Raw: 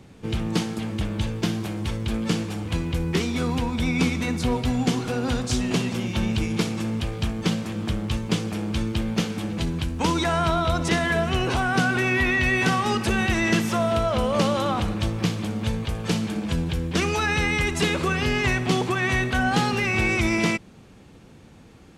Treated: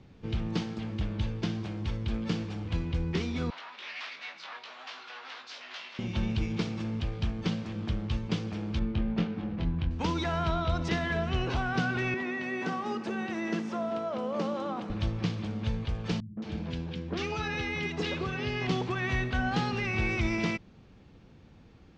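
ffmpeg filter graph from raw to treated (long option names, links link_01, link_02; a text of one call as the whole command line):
ffmpeg -i in.wav -filter_complex "[0:a]asettb=1/sr,asplit=3[link_01][link_02][link_03];[link_01]atrim=end=3.504[link_04];[link_02]atrim=start=3.5:end=5.99,asetpts=PTS-STARTPTS,afade=type=in:duration=0.004:curve=qsin,afade=type=out:start_time=2.486:duration=0.004:curve=qsin,aeval=exprs='0.0668*(abs(mod(val(0)/0.0668+3,4)-2)-1)':channel_layout=same,asuperpass=centerf=2300:order=4:qfactor=0.62,asplit=2[link_05][link_06];[link_06]adelay=19,volume=-5.5dB[link_07];[link_05][link_07]amix=inputs=2:normalize=0,atrim=end_sample=109809[link_08];[link_03]atrim=start=5.986[link_09];[link_04][link_08]acrossfade=duration=0.004:curve1=hsin:curve2=qsin[link_10];[link_10][link_09]acrossfade=duration=0.004:curve1=qsin:curve2=hsin,asettb=1/sr,asplit=3[link_11][link_12][link_13];[link_11]atrim=end=8.794[link_14];[link_12]atrim=start=8.79:end=9.91,asetpts=PTS-STARTPTS,afade=type=in:duration=0.004:curve=qsin,afade=type=out:start_time=1.116:duration=0.004:curve=qsin,asplit=2[link_15][link_16];[link_16]adelay=23,volume=-5dB[link_17];[link_15][link_17]amix=inputs=2:normalize=0,atrim=end_sample=49392,adynamicsmooth=sensitivity=1.5:basefreq=1900[link_18];[link_13]atrim=start=9.906[link_19];[link_14][link_18]acrossfade=duration=0.004:curve1=hsin:curve2=qsin[link_20];[link_20][link_19]acrossfade=duration=0.004:curve1=qsin:curve2=hsin,asettb=1/sr,asplit=3[link_21][link_22][link_23];[link_21]atrim=end=12.144[link_24];[link_22]atrim=start=12.14:end=14.9,asetpts=PTS-STARTPTS,afade=type=in:duration=0.004:curve=qsin,afade=type=out:start_time=2.756:duration=0.004:curve=qsin,highpass=frequency=200:width=0.5412,highpass=frequency=200:width=1.3066,equalizer=frequency=3500:width_type=o:width=2.2:gain=-8.5,acrusher=bits=8:mode=log:mix=0:aa=0.000001[link_25];[link_23]atrim=start=14.896[link_26];[link_24][link_25]acrossfade=duration=0.004:curve1=hsin:curve2=qsin[link_27];[link_27][link_26]acrossfade=duration=0.004:curve1=qsin:curve2=hsin,asettb=1/sr,asplit=3[link_28][link_29][link_30];[link_28]atrim=end=16.204[link_31];[link_29]atrim=start=16.2:end=18.67,asetpts=PTS-STARTPTS,afade=type=in:duration=0.004:curve=qsin,afade=type=out:start_time=2.466:duration=0.004:curve=qsin,highpass=110,lowpass=6500,acrossover=split=170|1400[link_32][link_33][link_34];[link_33]adelay=170[link_35];[link_34]adelay=220[link_36];[link_32][link_35][link_36]amix=inputs=3:normalize=0,atrim=end_sample=108927[link_37];[link_30]atrim=start=18.666[link_38];[link_31][link_37]acrossfade=duration=0.004:curve1=hsin:curve2=qsin[link_39];[link_39][link_38]acrossfade=duration=0.004:curve1=qsin:curve2=hsin,lowpass=frequency=5600:width=0.5412,lowpass=frequency=5600:width=1.3066,lowshelf=frequency=110:gain=7,volume=-8.5dB" out.wav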